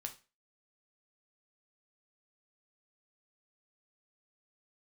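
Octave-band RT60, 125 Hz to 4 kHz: 0.30, 0.30, 0.35, 0.30, 0.30, 0.30 seconds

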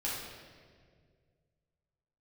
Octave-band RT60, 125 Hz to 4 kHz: 2.8, 2.3, 2.3, 1.6, 1.6, 1.4 seconds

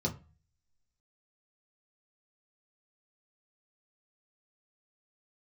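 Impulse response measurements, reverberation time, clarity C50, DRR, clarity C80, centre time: 0.35 s, 15.5 dB, −1.5 dB, 21.0 dB, 11 ms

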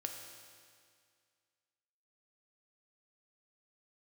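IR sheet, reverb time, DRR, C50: 2.1 s, 2.5 dB, 4.5 dB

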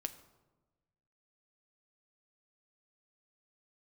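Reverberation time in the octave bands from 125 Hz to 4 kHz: 1.7, 1.4, 1.3, 1.1, 0.75, 0.65 seconds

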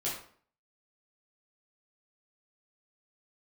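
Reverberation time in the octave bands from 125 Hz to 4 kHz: 0.50, 0.55, 0.55, 0.50, 0.45, 0.40 seconds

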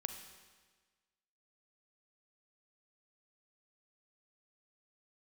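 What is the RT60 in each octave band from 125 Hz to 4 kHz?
1.4, 1.5, 1.4, 1.4, 1.4, 1.4 seconds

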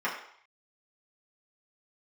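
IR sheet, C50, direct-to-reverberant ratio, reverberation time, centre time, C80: 6.0 dB, −7.5 dB, 0.65 s, 31 ms, 9.0 dB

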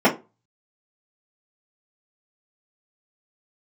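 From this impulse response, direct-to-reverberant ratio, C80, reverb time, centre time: −7.5 dB, 20.5 dB, 0.25 s, 14 ms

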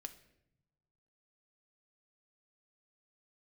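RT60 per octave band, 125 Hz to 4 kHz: 1.6, 1.2, 0.95, 0.70, 0.70, 0.60 seconds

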